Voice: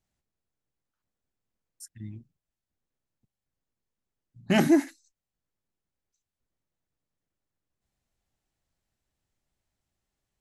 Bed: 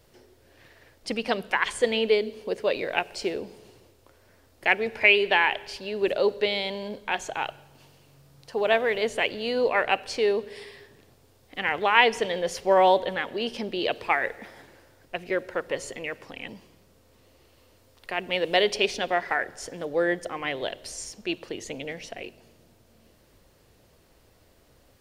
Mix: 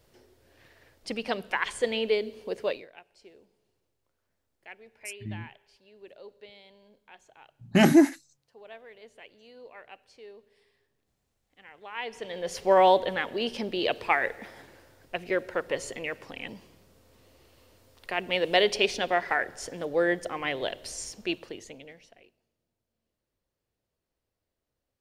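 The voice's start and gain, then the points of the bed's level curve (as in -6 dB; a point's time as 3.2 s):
3.25 s, +3.0 dB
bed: 2.7 s -4 dB
2.91 s -24.5 dB
11.74 s -24.5 dB
12.62 s -0.5 dB
21.29 s -0.5 dB
22.48 s -25.5 dB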